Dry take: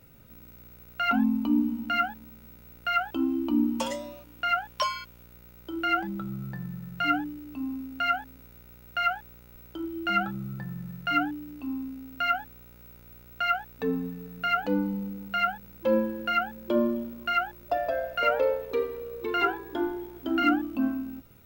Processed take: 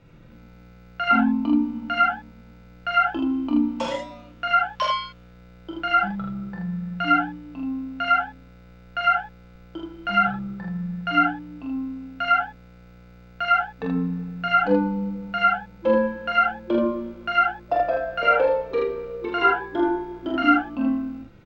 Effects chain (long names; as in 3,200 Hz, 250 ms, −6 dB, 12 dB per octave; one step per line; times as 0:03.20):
high-frequency loss of the air 150 metres
comb filter 5.9 ms, depth 36%
ambience of single reflections 26 ms −7 dB, 44 ms −3 dB, 79 ms −3 dB
level +3 dB